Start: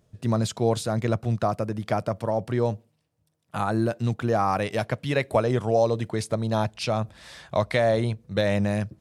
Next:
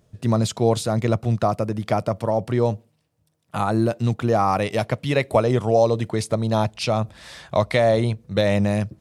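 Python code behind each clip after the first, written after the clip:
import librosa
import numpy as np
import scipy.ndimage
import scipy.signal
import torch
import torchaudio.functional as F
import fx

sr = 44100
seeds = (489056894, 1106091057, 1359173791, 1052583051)

y = fx.dynamic_eq(x, sr, hz=1600.0, q=5.5, threshold_db=-50.0, ratio=4.0, max_db=-6)
y = y * 10.0 ** (4.0 / 20.0)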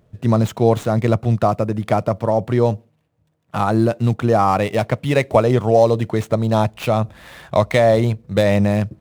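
y = scipy.ndimage.median_filter(x, 9, mode='constant')
y = y * 10.0 ** (4.0 / 20.0)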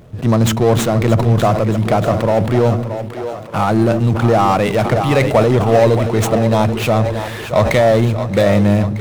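y = fx.power_curve(x, sr, exponent=0.7)
y = fx.echo_split(y, sr, split_hz=300.0, low_ms=166, high_ms=625, feedback_pct=52, wet_db=-9.5)
y = fx.sustainer(y, sr, db_per_s=62.0)
y = y * 10.0 ** (-1.0 / 20.0)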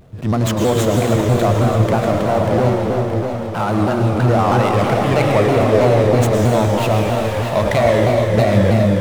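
y = fx.rev_plate(x, sr, seeds[0], rt60_s=3.9, hf_ratio=0.9, predelay_ms=95, drr_db=-1.0)
y = fx.vibrato_shape(y, sr, shape='saw_down', rate_hz=3.1, depth_cents=160.0)
y = y * 10.0 ** (-4.5 / 20.0)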